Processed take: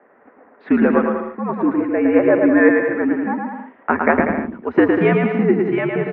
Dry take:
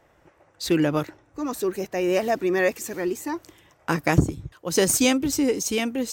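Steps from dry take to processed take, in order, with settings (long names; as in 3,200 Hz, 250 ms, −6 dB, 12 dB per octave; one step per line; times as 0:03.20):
bouncing-ball delay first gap 110 ms, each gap 0.75×, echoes 5
single-sideband voice off tune −84 Hz 320–2,100 Hz
level +8 dB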